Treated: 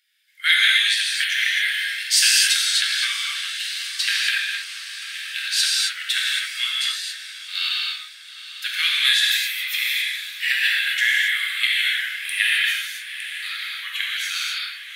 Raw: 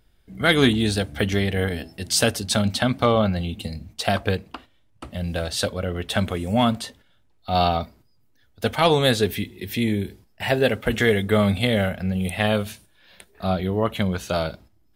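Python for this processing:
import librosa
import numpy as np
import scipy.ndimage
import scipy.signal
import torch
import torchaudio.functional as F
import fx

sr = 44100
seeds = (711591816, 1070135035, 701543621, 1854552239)

p1 = fx.high_shelf(x, sr, hz=4100.0, db=-6.0)
p2 = fx.echo_diffused(p1, sr, ms=852, feedback_pct=59, wet_db=-14.0)
p3 = fx.rider(p2, sr, range_db=3, speed_s=0.5)
p4 = p2 + F.gain(torch.from_numpy(p3), 1.0).numpy()
p5 = scipy.signal.sosfilt(scipy.signal.butter(8, 1700.0, 'highpass', fs=sr, output='sos'), p4)
y = fx.rev_gated(p5, sr, seeds[0], gate_ms=300, shape='flat', drr_db=-4.5)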